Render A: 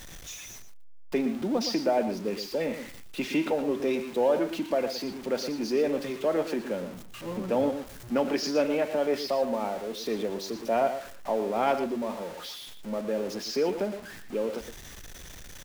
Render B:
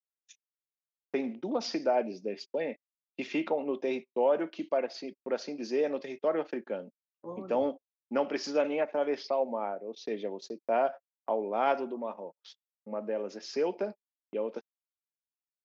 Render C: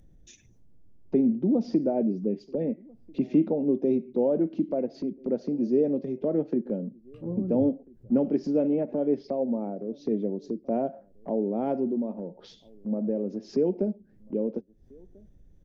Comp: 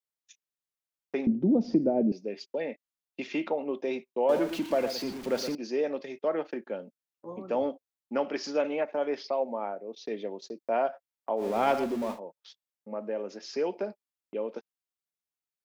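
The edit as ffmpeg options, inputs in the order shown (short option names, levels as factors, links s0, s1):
-filter_complex "[0:a]asplit=2[s0][s1];[1:a]asplit=4[s2][s3][s4][s5];[s2]atrim=end=1.272[s6];[2:a]atrim=start=1.268:end=2.122[s7];[s3]atrim=start=2.118:end=4.292[s8];[s0]atrim=start=4.288:end=5.552[s9];[s4]atrim=start=5.548:end=11.46[s10];[s1]atrim=start=11.36:end=12.2[s11];[s5]atrim=start=12.1[s12];[s6][s7]acrossfade=d=0.004:c1=hsin:c2=hsin[s13];[s13][s8]acrossfade=d=0.004:c1=hsin:c2=hsin[s14];[s14][s9]acrossfade=d=0.004:c1=hsin:c2=hsin[s15];[s15][s10]acrossfade=d=0.004:c1=hsin:c2=hsin[s16];[s16][s11]acrossfade=d=0.1:c1=tri:c2=tri[s17];[s17][s12]acrossfade=d=0.1:c1=tri:c2=tri"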